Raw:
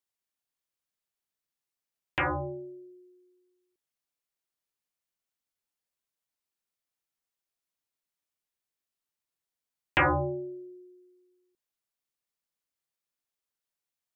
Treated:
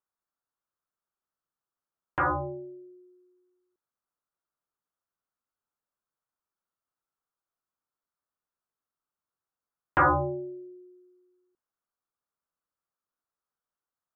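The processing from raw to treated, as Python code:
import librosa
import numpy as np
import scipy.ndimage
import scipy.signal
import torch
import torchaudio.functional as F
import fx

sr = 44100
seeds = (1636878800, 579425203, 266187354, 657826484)

y = fx.high_shelf_res(x, sr, hz=1800.0, db=-10.5, q=3.0)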